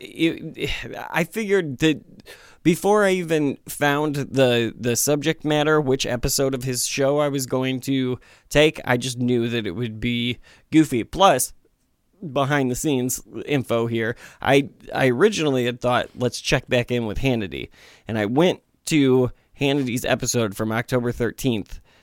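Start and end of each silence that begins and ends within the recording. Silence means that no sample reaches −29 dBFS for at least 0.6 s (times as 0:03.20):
0:11.47–0:12.23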